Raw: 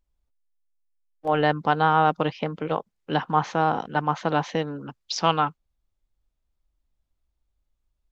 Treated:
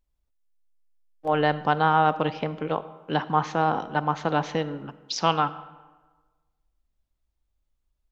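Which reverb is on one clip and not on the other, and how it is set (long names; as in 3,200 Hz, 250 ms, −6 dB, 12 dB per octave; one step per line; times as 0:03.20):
comb and all-pass reverb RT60 1.3 s, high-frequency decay 0.65×, pre-delay 5 ms, DRR 14.5 dB
level −1 dB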